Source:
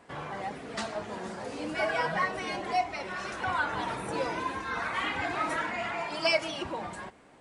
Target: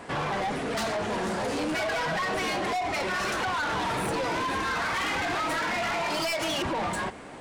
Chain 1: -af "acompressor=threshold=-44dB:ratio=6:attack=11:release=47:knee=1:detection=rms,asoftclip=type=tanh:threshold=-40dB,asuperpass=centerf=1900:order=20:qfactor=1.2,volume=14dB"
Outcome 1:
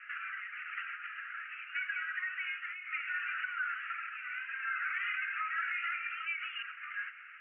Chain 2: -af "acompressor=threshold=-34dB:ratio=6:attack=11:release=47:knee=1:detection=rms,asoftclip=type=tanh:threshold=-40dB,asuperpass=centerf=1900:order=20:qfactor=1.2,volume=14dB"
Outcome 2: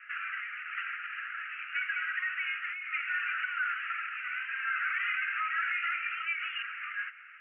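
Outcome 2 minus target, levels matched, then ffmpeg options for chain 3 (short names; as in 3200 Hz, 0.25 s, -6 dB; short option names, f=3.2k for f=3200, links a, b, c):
2000 Hz band +4.5 dB
-af "acompressor=threshold=-34dB:ratio=6:attack=11:release=47:knee=1:detection=rms,asoftclip=type=tanh:threshold=-40dB,volume=14dB"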